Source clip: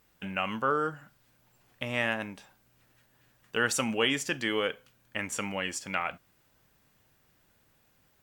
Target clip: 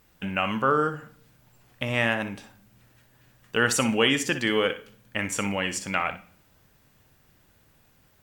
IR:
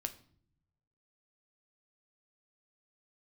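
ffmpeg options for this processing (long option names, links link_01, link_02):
-filter_complex "[0:a]lowshelf=frequency=210:gain=4.5,asplit=2[link_01][link_02];[1:a]atrim=start_sample=2205,asetrate=33516,aresample=44100,adelay=60[link_03];[link_02][link_03]afir=irnorm=-1:irlink=0,volume=-12dB[link_04];[link_01][link_04]amix=inputs=2:normalize=0,volume=4.5dB"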